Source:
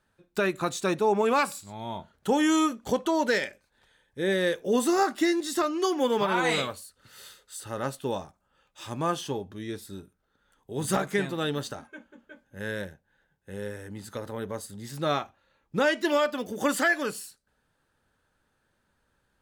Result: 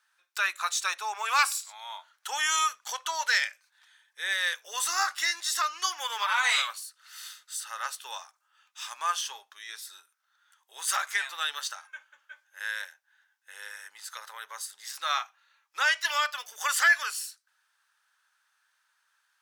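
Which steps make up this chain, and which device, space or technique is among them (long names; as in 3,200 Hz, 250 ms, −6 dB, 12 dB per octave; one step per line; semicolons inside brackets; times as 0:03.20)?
headphones lying on a table (high-pass filter 1,100 Hz 24 dB per octave; parametric band 5,700 Hz +5.5 dB 0.36 octaves)
0:01.29–0:01.72: parametric band 11,000 Hz +3.5 dB 2.6 octaves
level +4 dB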